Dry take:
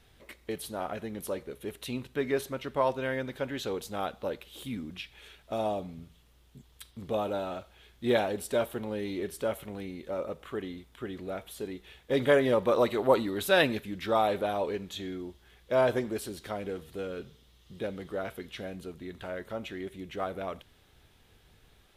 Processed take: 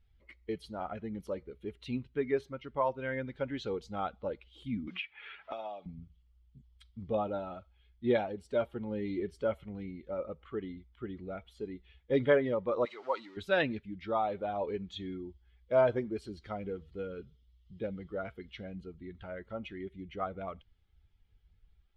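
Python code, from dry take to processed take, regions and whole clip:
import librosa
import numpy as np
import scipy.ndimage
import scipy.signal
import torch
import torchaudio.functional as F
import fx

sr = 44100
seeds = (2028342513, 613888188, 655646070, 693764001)

y = fx.chain(x, sr, fx.bandpass_q(hz=1900.0, q=0.55),
    fx.band_squash(depth_pct=100), at=(4.87, 5.86))
y = fx.chain(y, sr, fx.zero_step(step_db=-35.0),
    fx.highpass(hz=1400.0, slope=6),
    fx.peak_eq(hz=13000.0, db=-10.0, octaves=0.4), at=(12.85, 13.37))
y = fx.bin_expand(y, sr, power=1.5)
y = scipy.signal.sosfilt(scipy.signal.butter(2, 2900.0, 'lowpass', fs=sr, output='sos'), y)
y = fx.rider(y, sr, range_db=4, speed_s=0.5)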